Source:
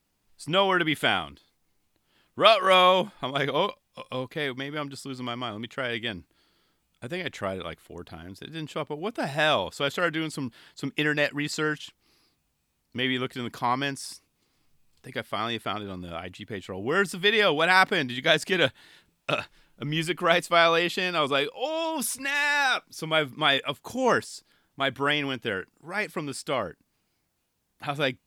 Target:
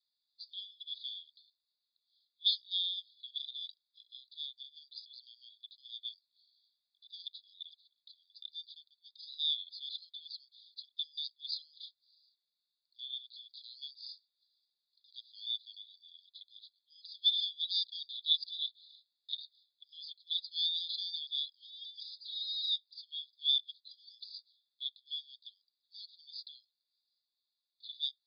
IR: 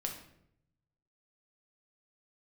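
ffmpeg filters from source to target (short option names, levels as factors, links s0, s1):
-af "asuperpass=centerf=4100:order=20:qfactor=2.7"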